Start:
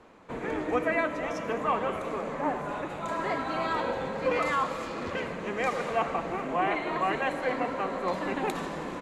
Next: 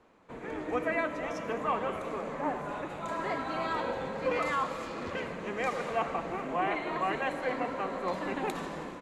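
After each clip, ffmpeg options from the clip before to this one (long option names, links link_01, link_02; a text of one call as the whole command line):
ffmpeg -i in.wav -af "dynaudnorm=framelen=420:gausssize=3:maxgain=5dB,volume=-8dB" out.wav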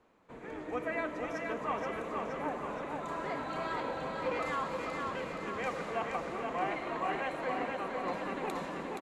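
ffmpeg -i in.wav -af "aecho=1:1:473|946|1419|1892|2365|2838|3311|3784:0.631|0.366|0.212|0.123|0.0714|0.0414|0.024|0.0139,volume=-5dB" out.wav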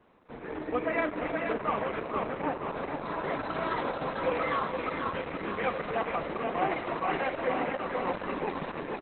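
ffmpeg -i in.wav -af "volume=6.5dB" -ar 48000 -c:a libopus -b:a 8k out.opus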